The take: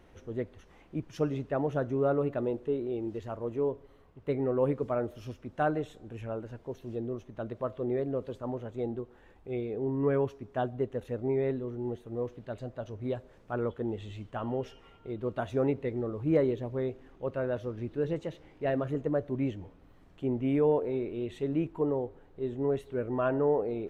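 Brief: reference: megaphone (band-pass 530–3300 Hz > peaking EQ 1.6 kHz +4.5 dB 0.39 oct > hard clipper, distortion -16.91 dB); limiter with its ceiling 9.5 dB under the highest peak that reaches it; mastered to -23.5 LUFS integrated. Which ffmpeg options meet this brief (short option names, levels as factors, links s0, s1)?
-af "alimiter=level_in=1.12:limit=0.0631:level=0:latency=1,volume=0.891,highpass=530,lowpass=3300,equalizer=f=1600:t=o:w=0.39:g=4.5,asoftclip=type=hard:threshold=0.0251,volume=8.41"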